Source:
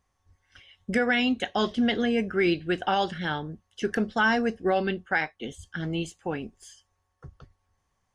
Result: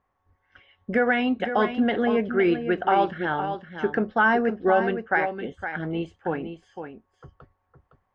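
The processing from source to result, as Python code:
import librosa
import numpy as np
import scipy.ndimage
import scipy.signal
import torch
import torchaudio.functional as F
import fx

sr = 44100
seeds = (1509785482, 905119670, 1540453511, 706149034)

y = scipy.signal.sosfilt(scipy.signal.butter(2, 1500.0, 'lowpass', fs=sr, output='sos'), x)
y = fx.low_shelf(y, sr, hz=210.0, db=-11.5)
y = y + 10.0 ** (-9.0 / 20.0) * np.pad(y, (int(511 * sr / 1000.0), 0))[:len(y)]
y = y * 10.0 ** (6.0 / 20.0)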